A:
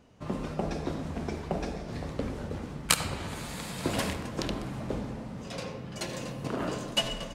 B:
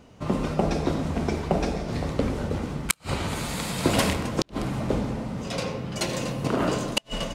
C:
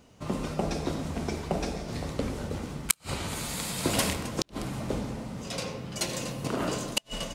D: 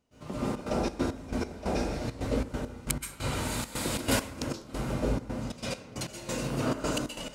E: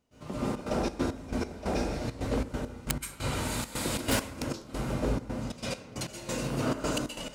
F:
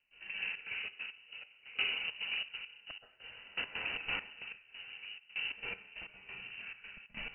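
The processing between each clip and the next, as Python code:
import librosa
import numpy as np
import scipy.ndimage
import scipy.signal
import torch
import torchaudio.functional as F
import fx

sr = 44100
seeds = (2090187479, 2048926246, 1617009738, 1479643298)

y1 = fx.notch(x, sr, hz=1700.0, q=19.0)
y1 = fx.gate_flip(y1, sr, shuts_db=-15.0, range_db=-39)
y1 = y1 * librosa.db_to_amplitude(8.0)
y2 = fx.high_shelf(y1, sr, hz=4300.0, db=9.0)
y2 = y2 * librosa.db_to_amplitude(-6.0)
y3 = fx.rev_plate(y2, sr, seeds[0], rt60_s=0.65, hf_ratio=0.5, predelay_ms=115, drr_db=-9.0)
y3 = fx.step_gate(y3, sr, bpm=136, pattern='.xxxx.xx.x..x.', floor_db=-12.0, edge_ms=4.5)
y3 = y3 * librosa.db_to_amplitude(-7.5)
y4 = np.minimum(y3, 2.0 * 10.0 ** (-21.5 / 20.0) - y3)
y5 = fx.freq_invert(y4, sr, carrier_hz=2900)
y5 = fx.tremolo_decay(y5, sr, direction='decaying', hz=0.56, depth_db=21)
y5 = y5 * librosa.db_to_amplitude(-2.5)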